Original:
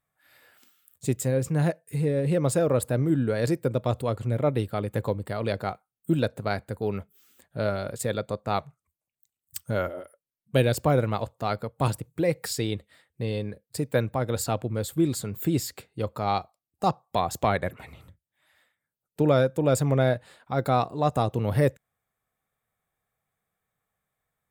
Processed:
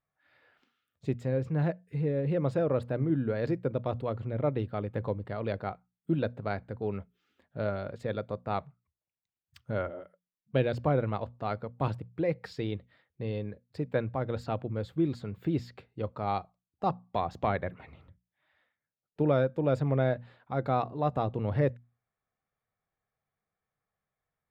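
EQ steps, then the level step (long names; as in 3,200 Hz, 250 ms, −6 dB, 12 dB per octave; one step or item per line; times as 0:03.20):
high-frequency loss of the air 270 metres
mains-hum notches 60/120/180/240 Hz
−4.0 dB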